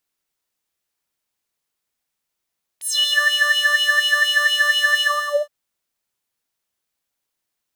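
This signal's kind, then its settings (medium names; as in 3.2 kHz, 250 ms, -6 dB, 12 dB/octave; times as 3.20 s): synth patch with filter wobble D5, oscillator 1 square, oscillator 2 square, interval +12 st, oscillator 2 level -13 dB, sub -29 dB, noise -27 dB, filter highpass, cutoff 570 Hz, Q 8.3, filter envelope 4 oct, filter decay 0.34 s, filter sustain 45%, attack 58 ms, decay 0.05 s, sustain -4 dB, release 0.47 s, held 2.20 s, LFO 4.2 Hz, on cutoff 0.5 oct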